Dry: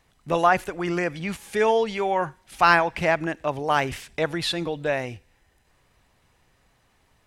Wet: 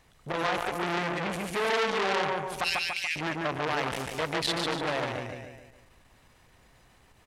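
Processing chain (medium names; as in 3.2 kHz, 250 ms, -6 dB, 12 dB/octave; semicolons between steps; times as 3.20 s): 2.64–3.16 s: steep high-pass 2.4 kHz 36 dB/octave; peak limiter -17.5 dBFS, peak gain reduction 11.5 dB; feedback delay 144 ms, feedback 45%, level -3.5 dB; transformer saturation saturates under 3 kHz; trim +2.5 dB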